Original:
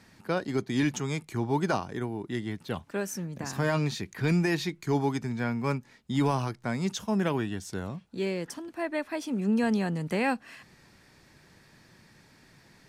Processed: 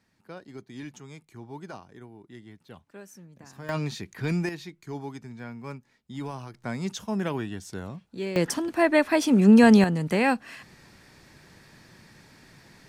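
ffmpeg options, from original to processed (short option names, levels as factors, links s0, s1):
-af "asetnsamples=n=441:p=0,asendcmd='3.69 volume volume -2dB;4.49 volume volume -9.5dB;6.54 volume volume -1.5dB;8.36 volume volume 11dB;9.84 volume volume 4.5dB',volume=0.211"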